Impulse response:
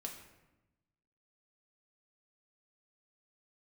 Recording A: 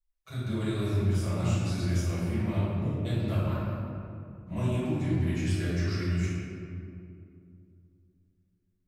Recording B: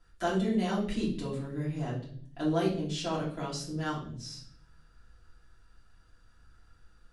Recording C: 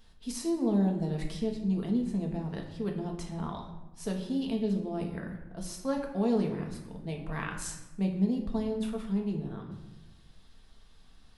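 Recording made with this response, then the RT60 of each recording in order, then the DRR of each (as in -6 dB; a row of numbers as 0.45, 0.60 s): C; 2.5, 0.55, 1.0 s; -13.0, -8.0, 1.0 dB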